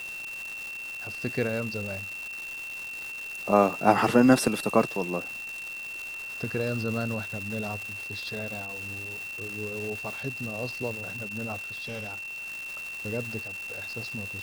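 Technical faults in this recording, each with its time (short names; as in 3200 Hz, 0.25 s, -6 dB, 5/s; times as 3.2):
crackle 580/s -33 dBFS
tone 2700 Hz -35 dBFS
11.64–12.48 clipped -32 dBFS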